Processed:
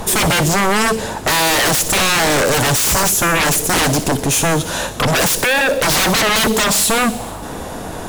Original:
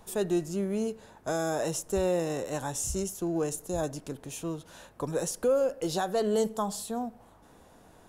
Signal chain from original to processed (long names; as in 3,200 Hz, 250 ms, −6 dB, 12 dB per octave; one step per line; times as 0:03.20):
0:05.32–0:05.72: downward compressor 3 to 1, threshold −30 dBFS, peak gain reduction 7 dB
sine wavefolder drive 19 dB, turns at −17.5 dBFS
delay with a high-pass on its return 61 ms, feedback 75%, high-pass 3,600 Hz, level −11 dB
level +6 dB